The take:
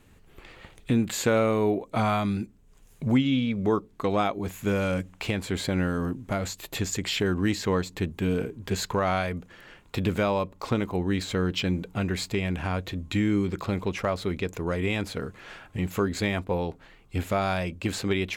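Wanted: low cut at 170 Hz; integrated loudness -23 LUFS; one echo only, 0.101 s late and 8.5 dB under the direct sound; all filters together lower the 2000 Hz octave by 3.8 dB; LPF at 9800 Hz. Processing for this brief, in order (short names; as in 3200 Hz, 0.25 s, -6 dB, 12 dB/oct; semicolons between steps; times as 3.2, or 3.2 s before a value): HPF 170 Hz; LPF 9800 Hz; bell 2000 Hz -5 dB; echo 0.101 s -8.5 dB; gain +6 dB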